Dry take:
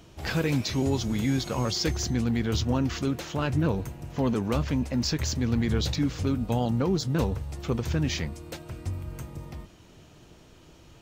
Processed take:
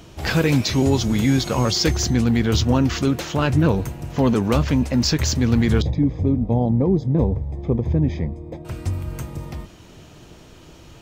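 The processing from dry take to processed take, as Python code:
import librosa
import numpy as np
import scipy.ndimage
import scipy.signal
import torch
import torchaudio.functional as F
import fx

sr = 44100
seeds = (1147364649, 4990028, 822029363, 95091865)

y = fx.moving_average(x, sr, points=31, at=(5.82, 8.65))
y = y * 10.0 ** (8.0 / 20.0)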